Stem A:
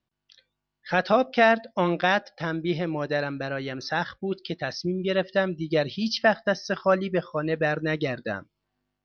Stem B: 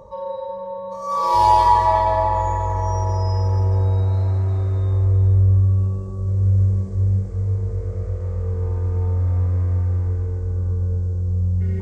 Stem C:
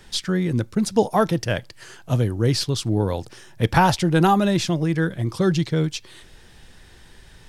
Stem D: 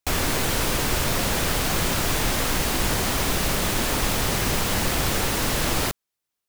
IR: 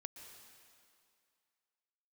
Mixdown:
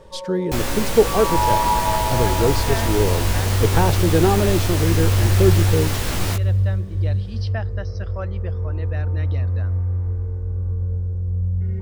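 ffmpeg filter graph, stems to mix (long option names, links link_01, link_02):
-filter_complex "[0:a]adelay=1300,volume=-11.5dB,asplit=2[link_01][link_02];[link_02]volume=-20dB[link_03];[1:a]highshelf=frequency=4300:gain=-11.5,volume=-5dB[link_04];[2:a]equalizer=frequency=420:width=1.4:gain=14,volume=-8.5dB,asplit=2[link_05][link_06];[link_06]volume=-15dB[link_07];[3:a]flanger=delay=16.5:depth=3.4:speed=0.54,adelay=450,volume=-0.5dB,asplit=2[link_08][link_09];[link_09]volume=-11.5dB[link_10];[4:a]atrim=start_sample=2205[link_11];[link_03][link_07][link_10]amix=inputs=3:normalize=0[link_12];[link_12][link_11]afir=irnorm=-1:irlink=0[link_13];[link_01][link_04][link_05][link_08][link_13]amix=inputs=5:normalize=0,lowshelf=frequency=80:gain=7"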